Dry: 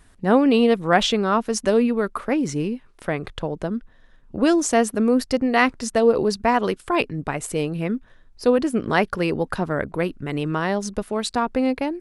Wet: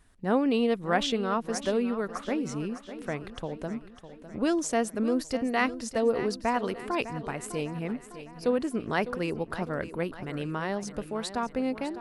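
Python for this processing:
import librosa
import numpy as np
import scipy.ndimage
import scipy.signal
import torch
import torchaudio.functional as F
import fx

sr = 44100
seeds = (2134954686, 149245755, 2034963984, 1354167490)

y = fx.echo_feedback(x, sr, ms=604, feedback_pct=52, wet_db=-13.0)
y = F.gain(torch.from_numpy(y), -8.5).numpy()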